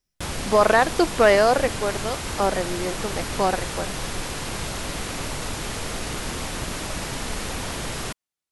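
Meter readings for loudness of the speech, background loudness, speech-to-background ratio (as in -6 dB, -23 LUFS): -21.5 LUFS, -29.5 LUFS, 8.0 dB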